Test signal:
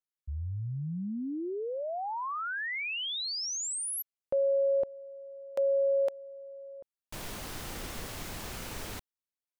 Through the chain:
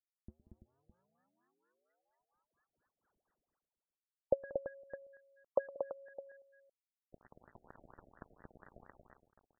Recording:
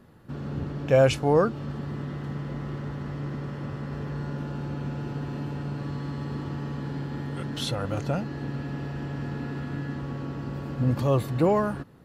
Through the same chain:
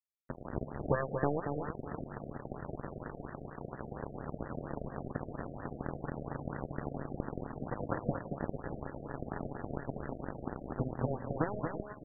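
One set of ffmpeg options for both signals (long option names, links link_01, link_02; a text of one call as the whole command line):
ffmpeg -i in.wav -af "acompressor=threshold=-37dB:ratio=6:attack=44:release=155:knee=6:detection=peak,aresample=11025,acrusher=bits=4:mix=0:aa=0.5,aresample=44100,aecho=1:1:113|184|232|335|611:0.126|0.158|0.596|0.335|0.2,aeval=exprs='0.112*(cos(1*acos(clip(val(0)/0.112,-1,1)))-cos(1*PI/2))+0.0251*(cos(3*acos(clip(val(0)/0.112,-1,1)))-cos(3*PI/2))':channel_layout=same,asoftclip=type=tanh:threshold=-26.5dB,lowpass=frequency=2900:width_type=q:width=1.5,afftfilt=real='re*lt(b*sr/1024,720*pow(2000/720,0.5+0.5*sin(2*PI*4.3*pts/sr)))':imag='im*lt(b*sr/1024,720*pow(2000/720,0.5+0.5*sin(2*PI*4.3*pts/sr)))':win_size=1024:overlap=0.75,volume=10.5dB" out.wav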